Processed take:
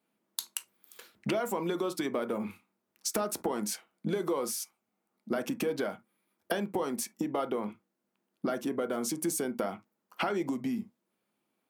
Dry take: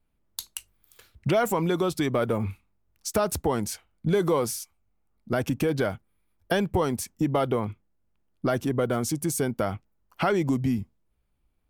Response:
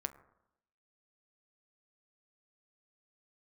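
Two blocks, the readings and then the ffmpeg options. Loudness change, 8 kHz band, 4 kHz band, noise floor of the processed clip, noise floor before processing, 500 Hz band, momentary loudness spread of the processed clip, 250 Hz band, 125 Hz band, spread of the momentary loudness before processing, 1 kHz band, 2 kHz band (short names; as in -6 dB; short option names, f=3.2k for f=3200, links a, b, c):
-6.5 dB, -2.5 dB, -3.5 dB, -83 dBFS, -71 dBFS, -7.0 dB, 9 LU, -6.0 dB, -15.0 dB, 12 LU, -6.5 dB, -6.5 dB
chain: -filter_complex "[0:a]highpass=f=200:w=0.5412,highpass=f=200:w=1.3066,acompressor=threshold=-32dB:ratio=6[a];[1:a]atrim=start_sample=2205,atrim=end_sample=3528[b];[a][b]afir=irnorm=-1:irlink=0,volume=4dB"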